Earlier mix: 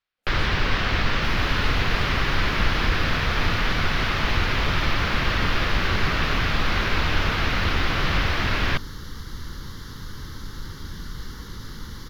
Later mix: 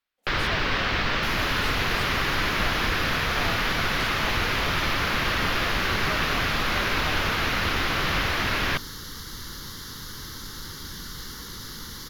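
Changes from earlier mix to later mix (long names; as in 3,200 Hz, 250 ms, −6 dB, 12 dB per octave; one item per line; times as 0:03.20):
speech +12.0 dB
second sound: add high-shelf EQ 4,200 Hz +11 dB
master: add low-shelf EQ 140 Hz −8.5 dB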